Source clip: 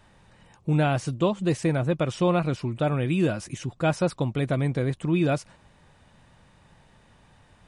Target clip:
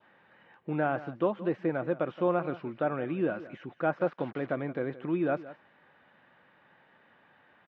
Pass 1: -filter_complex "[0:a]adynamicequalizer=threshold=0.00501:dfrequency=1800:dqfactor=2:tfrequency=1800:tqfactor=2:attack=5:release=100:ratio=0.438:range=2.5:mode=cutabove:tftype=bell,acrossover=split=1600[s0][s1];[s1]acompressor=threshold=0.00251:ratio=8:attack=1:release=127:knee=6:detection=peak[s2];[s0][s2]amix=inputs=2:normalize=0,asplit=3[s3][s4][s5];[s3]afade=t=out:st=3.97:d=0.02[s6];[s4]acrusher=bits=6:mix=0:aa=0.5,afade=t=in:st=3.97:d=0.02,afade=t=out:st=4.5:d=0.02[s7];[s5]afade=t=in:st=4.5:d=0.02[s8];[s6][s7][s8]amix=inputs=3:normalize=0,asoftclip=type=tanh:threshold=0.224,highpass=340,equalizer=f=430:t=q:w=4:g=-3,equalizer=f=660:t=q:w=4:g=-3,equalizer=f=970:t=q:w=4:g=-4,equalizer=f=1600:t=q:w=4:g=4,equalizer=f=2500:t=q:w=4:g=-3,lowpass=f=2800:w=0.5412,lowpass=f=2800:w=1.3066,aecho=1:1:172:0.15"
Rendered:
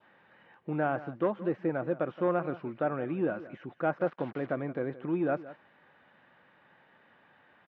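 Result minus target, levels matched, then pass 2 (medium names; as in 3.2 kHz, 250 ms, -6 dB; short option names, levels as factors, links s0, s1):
saturation: distortion +15 dB; compression: peak gain reduction +6 dB
-filter_complex "[0:a]adynamicequalizer=threshold=0.00501:dfrequency=1800:dqfactor=2:tfrequency=1800:tqfactor=2:attack=5:release=100:ratio=0.438:range=2.5:mode=cutabove:tftype=bell,acrossover=split=1600[s0][s1];[s1]acompressor=threshold=0.00562:ratio=8:attack=1:release=127:knee=6:detection=peak[s2];[s0][s2]amix=inputs=2:normalize=0,asplit=3[s3][s4][s5];[s3]afade=t=out:st=3.97:d=0.02[s6];[s4]acrusher=bits=6:mix=0:aa=0.5,afade=t=in:st=3.97:d=0.02,afade=t=out:st=4.5:d=0.02[s7];[s5]afade=t=in:st=4.5:d=0.02[s8];[s6][s7][s8]amix=inputs=3:normalize=0,asoftclip=type=tanh:threshold=0.596,highpass=340,equalizer=f=430:t=q:w=4:g=-3,equalizer=f=660:t=q:w=4:g=-3,equalizer=f=970:t=q:w=4:g=-4,equalizer=f=1600:t=q:w=4:g=4,equalizer=f=2500:t=q:w=4:g=-3,lowpass=f=2800:w=0.5412,lowpass=f=2800:w=1.3066,aecho=1:1:172:0.15"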